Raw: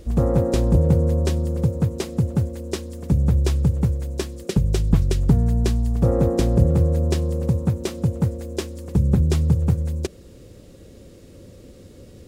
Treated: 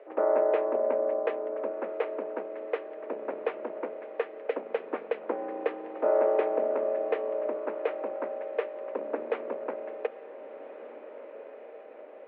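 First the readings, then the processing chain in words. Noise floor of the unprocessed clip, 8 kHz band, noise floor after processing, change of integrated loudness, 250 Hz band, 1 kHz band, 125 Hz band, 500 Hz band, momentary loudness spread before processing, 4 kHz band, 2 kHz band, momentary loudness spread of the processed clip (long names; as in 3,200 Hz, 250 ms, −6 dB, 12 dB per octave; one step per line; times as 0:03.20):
−46 dBFS, below −40 dB, −46 dBFS, −10.0 dB, −18.0 dB, +2.0 dB, below −40 dB, 0.0 dB, 9 LU, below −15 dB, −0.5 dB, 19 LU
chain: sub-octave generator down 2 octaves, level −4 dB
single-sideband voice off tune +84 Hz 360–2,300 Hz
feedback delay with all-pass diffusion 1,528 ms, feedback 50%, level −13 dB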